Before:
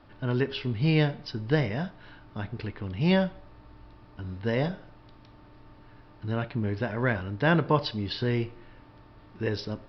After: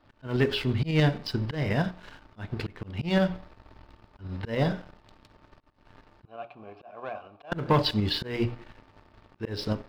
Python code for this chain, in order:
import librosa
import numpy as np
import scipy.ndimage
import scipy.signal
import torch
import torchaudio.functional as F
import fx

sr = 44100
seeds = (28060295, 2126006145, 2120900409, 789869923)

y = fx.hum_notches(x, sr, base_hz=60, count=7)
y = fx.leveller(y, sr, passes=2)
y = fx.vowel_filter(y, sr, vowel='a', at=(6.25, 7.52))
y = fx.auto_swell(y, sr, attack_ms=217.0)
y = fx.tremolo_shape(y, sr, shape='saw_up', hz=11.0, depth_pct=40)